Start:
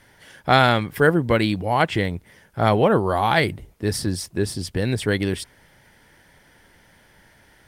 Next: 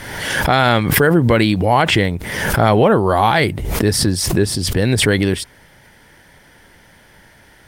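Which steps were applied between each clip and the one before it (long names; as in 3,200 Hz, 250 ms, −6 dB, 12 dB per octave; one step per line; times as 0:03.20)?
boost into a limiter +9 dB
background raised ahead of every attack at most 41 dB per second
level −2.5 dB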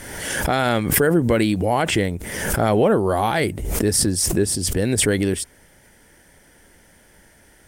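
octave-band graphic EQ 125/1,000/2,000/4,000/8,000 Hz −6/−6/−3/−7/+6 dB
level −2 dB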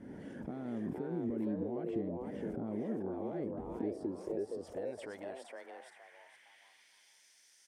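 downward compressor 6 to 1, threshold −27 dBFS, peak gain reduction 13.5 dB
band-pass filter sweep 240 Hz → 5,600 Hz, 0:03.62–0:07.18
on a send: echo with shifted repeats 465 ms, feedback 32%, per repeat +130 Hz, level −3 dB
on the sum: level −2.5 dB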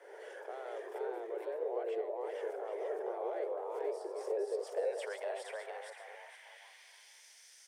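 delay that plays each chunk backwards 212 ms, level −8 dB
Butterworth high-pass 410 Hz 72 dB per octave
level +5.5 dB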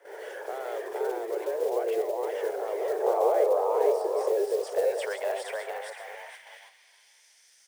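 one scale factor per block 5 bits
noise gate −55 dBFS, range −10 dB
gain on a spectral selection 0:03.02–0:04.29, 430–1,300 Hz +6 dB
level +9 dB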